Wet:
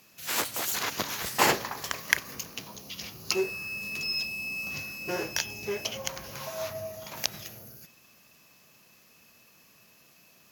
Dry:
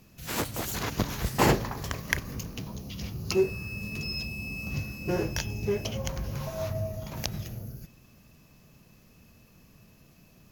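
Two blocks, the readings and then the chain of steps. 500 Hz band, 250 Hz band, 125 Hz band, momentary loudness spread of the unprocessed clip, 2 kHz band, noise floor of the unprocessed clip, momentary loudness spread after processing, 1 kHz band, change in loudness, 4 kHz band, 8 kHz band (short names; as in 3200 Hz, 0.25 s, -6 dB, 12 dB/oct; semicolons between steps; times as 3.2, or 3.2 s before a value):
-3.5 dB, -7.5 dB, -14.0 dB, 11 LU, +4.0 dB, -58 dBFS, 12 LU, +1.0 dB, +0.5 dB, +4.5 dB, +5.0 dB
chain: HPF 1100 Hz 6 dB/oct; gain +5 dB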